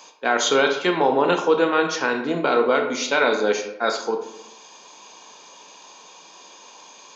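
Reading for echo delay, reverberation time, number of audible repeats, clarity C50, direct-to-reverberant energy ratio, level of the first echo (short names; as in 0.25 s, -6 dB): none, 0.85 s, none, 7.0 dB, 4.5 dB, none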